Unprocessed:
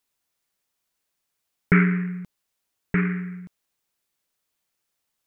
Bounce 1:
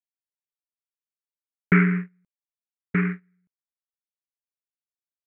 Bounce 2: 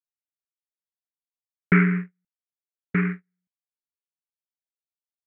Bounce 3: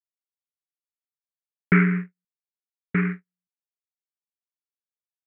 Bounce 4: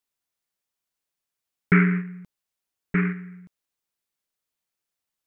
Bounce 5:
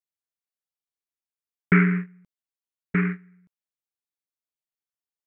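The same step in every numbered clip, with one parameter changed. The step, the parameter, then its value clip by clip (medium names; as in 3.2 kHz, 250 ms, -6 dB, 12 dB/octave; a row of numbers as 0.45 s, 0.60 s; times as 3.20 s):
gate, range: -32 dB, -47 dB, -59 dB, -7 dB, -20 dB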